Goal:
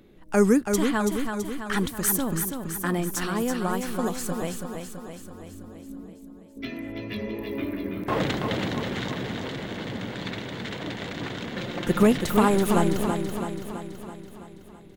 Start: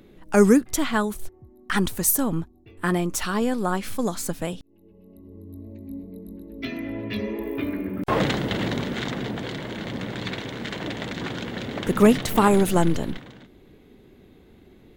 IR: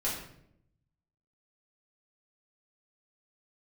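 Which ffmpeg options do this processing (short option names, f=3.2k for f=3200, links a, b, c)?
-filter_complex "[0:a]asettb=1/sr,asplit=3[a][b][c];[a]atrim=end=6.134[d];[b]atrim=start=6.13:end=6.57,asetpts=PTS-STARTPTS,afade=t=in:d=0.004:c=qsin,afade=t=out:st=0.436:d=0.004:c=qsin,asuperpass=centerf=1000:order=4:qfactor=0.94[e];[c]atrim=start=6.566[f];[d][e]acrossfade=d=0.004:c1=hsin:c2=qsin[g];[g][f]acrossfade=d=0.004:c1=qsin:c2=hsin,asettb=1/sr,asplit=3[h][i][j];[h]atrim=end=11.564[k];[i]atrim=start=11.56:end=12.03,asetpts=PTS-STARTPTS,afade=t=in:d=0.004:c=qsin,afade=t=out:st=0.466:d=0.004:c=qsin,aecho=1:1:5.7:0.81,atrim=end_sample=20727[l];[j]atrim=start=12.026[m];[k][l]acrossfade=d=0.004:c1=hsin:c2=qsin[n];[n][m]acrossfade=d=0.004:c1=qsin:c2=hsin,aecho=1:1:330|660|990|1320|1650|1980|2310|2640:0.501|0.296|0.174|0.103|0.0607|0.0358|0.0211|0.0125,volume=-3.5dB"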